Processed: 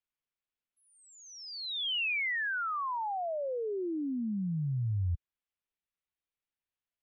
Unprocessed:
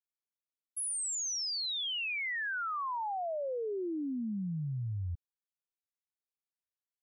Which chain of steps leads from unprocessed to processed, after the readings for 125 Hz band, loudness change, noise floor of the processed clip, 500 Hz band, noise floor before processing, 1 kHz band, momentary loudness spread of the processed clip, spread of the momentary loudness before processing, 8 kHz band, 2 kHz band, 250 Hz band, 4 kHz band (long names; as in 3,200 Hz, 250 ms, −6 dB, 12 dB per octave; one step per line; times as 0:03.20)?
+4.0 dB, +1.5 dB, below −85 dBFS, +1.0 dB, below −85 dBFS, +1.5 dB, 11 LU, 5 LU, below −15 dB, +3.0 dB, +2.0 dB, 0.0 dB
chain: transistor ladder low-pass 3,800 Hz, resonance 30%
low-shelf EQ 88 Hz +10 dB
level +7.5 dB